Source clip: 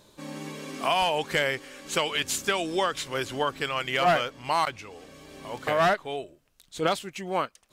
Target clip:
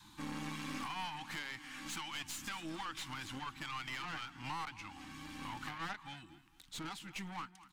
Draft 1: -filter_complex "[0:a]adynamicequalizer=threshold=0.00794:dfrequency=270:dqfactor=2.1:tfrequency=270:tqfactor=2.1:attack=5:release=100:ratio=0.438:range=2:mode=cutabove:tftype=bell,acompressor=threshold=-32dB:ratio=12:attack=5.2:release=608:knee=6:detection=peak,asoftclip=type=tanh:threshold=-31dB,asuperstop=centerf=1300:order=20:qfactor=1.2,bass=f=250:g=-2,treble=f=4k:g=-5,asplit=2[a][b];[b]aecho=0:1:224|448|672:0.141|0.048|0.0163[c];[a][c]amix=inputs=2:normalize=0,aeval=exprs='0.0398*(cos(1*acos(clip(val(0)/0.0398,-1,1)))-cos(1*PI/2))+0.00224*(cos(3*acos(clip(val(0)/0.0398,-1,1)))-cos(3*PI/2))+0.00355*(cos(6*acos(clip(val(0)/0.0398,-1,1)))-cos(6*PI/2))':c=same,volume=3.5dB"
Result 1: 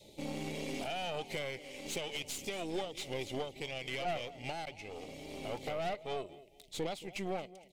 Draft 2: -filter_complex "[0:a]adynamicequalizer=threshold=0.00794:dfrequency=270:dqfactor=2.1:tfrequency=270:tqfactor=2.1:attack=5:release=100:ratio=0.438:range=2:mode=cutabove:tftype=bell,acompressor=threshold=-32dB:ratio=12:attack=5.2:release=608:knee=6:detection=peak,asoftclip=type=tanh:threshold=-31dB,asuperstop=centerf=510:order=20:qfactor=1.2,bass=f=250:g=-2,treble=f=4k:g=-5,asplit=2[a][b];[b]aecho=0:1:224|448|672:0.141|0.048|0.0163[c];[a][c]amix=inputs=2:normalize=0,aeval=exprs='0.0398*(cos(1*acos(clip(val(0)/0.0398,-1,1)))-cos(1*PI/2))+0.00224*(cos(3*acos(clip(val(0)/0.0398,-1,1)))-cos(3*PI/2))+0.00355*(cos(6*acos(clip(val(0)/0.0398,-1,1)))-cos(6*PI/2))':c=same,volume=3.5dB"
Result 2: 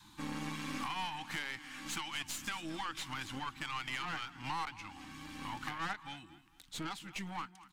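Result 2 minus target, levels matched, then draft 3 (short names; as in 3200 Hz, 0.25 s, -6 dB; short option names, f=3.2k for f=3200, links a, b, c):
soft clip: distortion -7 dB
-filter_complex "[0:a]adynamicequalizer=threshold=0.00794:dfrequency=270:dqfactor=2.1:tfrequency=270:tqfactor=2.1:attack=5:release=100:ratio=0.438:range=2:mode=cutabove:tftype=bell,acompressor=threshold=-32dB:ratio=12:attack=5.2:release=608:knee=6:detection=peak,asoftclip=type=tanh:threshold=-37.5dB,asuperstop=centerf=510:order=20:qfactor=1.2,bass=f=250:g=-2,treble=f=4k:g=-5,asplit=2[a][b];[b]aecho=0:1:224|448|672:0.141|0.048|0.0163[c];[a][c]amix=inputs=2:normalize=0,aeval=exprs='0.0398*(cos(1*acos(clip(val(0)/0.0398,-1,1)))-cos(1*PI/2))+0.00224*(cos(3*acos(clip(val(0)/0.0398,-1,1)))-cos(3*PI/2))+0.00355*(cos(6*acos(clip(val(0)/0.0398,-1,1)))-cos(6*PI/2))':c=same,volume=3.5dB"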